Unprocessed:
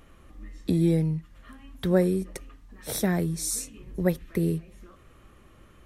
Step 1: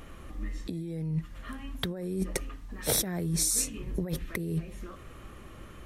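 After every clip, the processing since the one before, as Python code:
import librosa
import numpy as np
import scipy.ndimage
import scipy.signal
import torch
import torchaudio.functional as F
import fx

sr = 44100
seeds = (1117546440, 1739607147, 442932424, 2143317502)

y = fx.over_compress(x, sr, threshold_db=-32.0, ratio=-1.0)
y = y * librosa.db_to_amplitude(1.0)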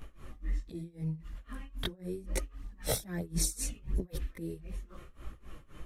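y = fx.low_shelf(x, sr, hz=63.0, db=10.0)
y = fx.chorus_voices(y, sr, voices=2, hz=0.75, base_ms=18, depth_ms=4.1, mix_pct=65)
y = y * (1.0 - 0.92 / 2.0 + 0.92 / 2.0 * np.cos(2.0 * np.pi * 3.8 * (np.arange(len(y)) / sr)))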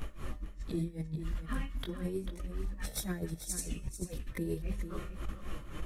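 y = fx.over_compress(x, sr, threshold_db=-39.0, ratio=-0.5)
y = fx.comb_fb(y, sr, f0_hz=200.0, decay_s=0.82, harmonics='odd', damping=0.0, mix_pct=60)
y = y + 10.0 ** (-10.0 / 20.0) * np.pad(y, (int(442 * sr / 1000.0), 0))[:len(y)]
y = y * librosa.db_to_amplitude(11.5)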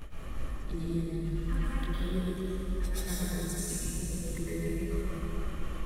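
y = fx.rev_plate(x, sr, seeds[0], rt60_s=3.1, hf_ratio=0.8, predelay_ms=95, drr_db=-8.0)
y = y * librosa.db_to_amplitude(-4.5)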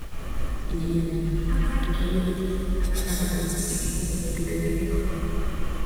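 y = fx.dmg_noise_colour(x, sr, seeds[1], colour='pink', level_db=-58.0)
y = y * librosa.db_to_amplitude(7.5)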